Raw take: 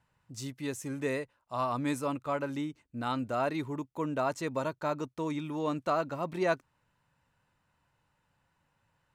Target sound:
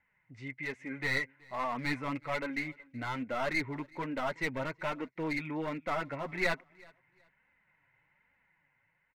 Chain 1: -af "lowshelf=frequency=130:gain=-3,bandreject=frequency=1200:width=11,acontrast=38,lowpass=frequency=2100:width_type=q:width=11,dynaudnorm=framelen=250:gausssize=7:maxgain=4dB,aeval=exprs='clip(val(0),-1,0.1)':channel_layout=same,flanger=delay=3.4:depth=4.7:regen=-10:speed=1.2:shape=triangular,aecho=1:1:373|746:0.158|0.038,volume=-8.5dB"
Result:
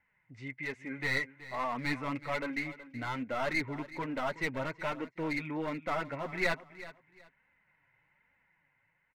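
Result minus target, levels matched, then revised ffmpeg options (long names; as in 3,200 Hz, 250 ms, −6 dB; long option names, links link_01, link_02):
echo-to-direct +9.5 dB
-af "lowshelf=frequency=130:gain=-3,bandreject=frequency=1200:width=11,acontrast=38,lowpass=frequency=2100:width_type=q:width=11,dynaudnorm=framelen=250:gausssize=7:maxgain=4dB,aeval=exprs='clip(val(0),-1,0.1)':channel_layout=same,flanger=delay=3.4:depth=4.7:regen=-10:speed=1.2:shape=triangular,aecho=1:1:373|746:0.0531|0.0127,volume=-8.5dB"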